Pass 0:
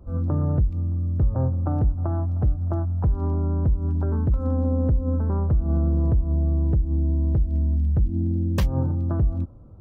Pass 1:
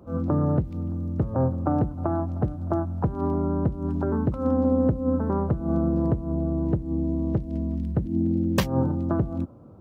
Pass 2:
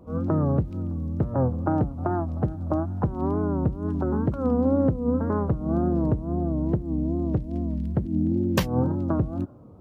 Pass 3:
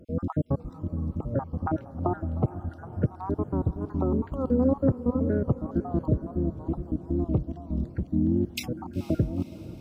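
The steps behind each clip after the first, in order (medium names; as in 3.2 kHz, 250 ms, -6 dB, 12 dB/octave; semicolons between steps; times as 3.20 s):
high-pass 170 Hz 12 dB/octave; trim +5.5 dB
wow and flutter 120 cents
random holes in the spectrogram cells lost 53%; echo that smears into a reverb 485 ms, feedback 59%, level -15.5 dB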